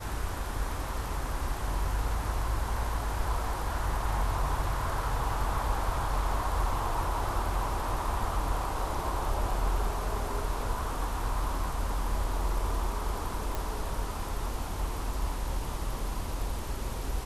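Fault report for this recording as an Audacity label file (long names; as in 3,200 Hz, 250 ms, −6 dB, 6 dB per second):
13.550000	13.550000	click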